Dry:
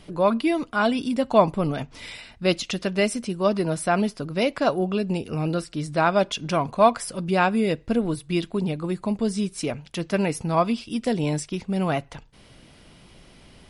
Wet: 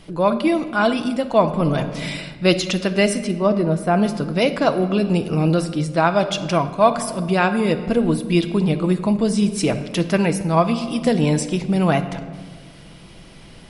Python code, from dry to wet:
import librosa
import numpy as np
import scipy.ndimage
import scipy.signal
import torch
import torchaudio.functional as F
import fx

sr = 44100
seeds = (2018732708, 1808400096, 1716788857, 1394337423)

y = fx.high_shelf(x, sr, hz=2100.0, db=-12.0, at=(3.31, 4.02))
y = fx.room_shoebox(y, sr, seeds[0], volume_m3=1900.0, walls='mixed', distance_m=0.67)
y = fx.rider(y, sr, range_db=4, speed_s=0.5)
y = y * librosa.db_to_amplitude(4.0)